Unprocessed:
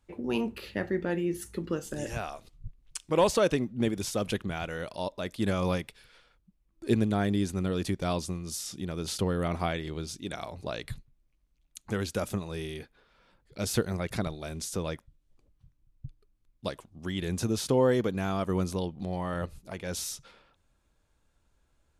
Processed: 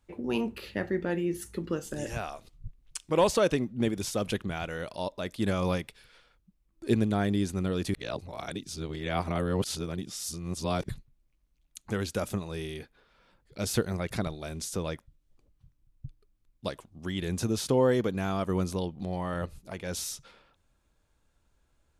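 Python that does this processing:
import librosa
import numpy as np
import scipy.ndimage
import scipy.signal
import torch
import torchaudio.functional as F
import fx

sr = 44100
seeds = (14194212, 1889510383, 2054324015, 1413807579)

y = fx.edit(x, sr, fx.reverse_span(start_s=7.94, length_s=2.95), tone=tone)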